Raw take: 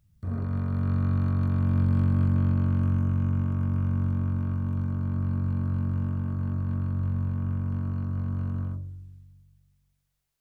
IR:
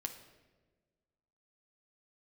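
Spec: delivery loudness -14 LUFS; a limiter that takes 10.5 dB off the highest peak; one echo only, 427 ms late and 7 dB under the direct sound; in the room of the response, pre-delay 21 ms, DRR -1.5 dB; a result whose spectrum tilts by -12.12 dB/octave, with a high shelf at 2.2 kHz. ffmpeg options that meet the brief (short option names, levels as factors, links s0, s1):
-filter_complex "[0:a]highshelf=f=2200:g=-7.5,alimiter=level_in=1.12:limit=0.0631:level=0:latency=1,volume=0.891,aecho=1:1:427:0.447,asplit=2[s0][s1];[1:a]atrim=start_sample=2205,adelay=21[s2];[s1][s2]afir=irnorm=-1:irlink=0,volume=1.41[s3];[s0][s3]amix=inputs=2:normalize=0,volume=6.31"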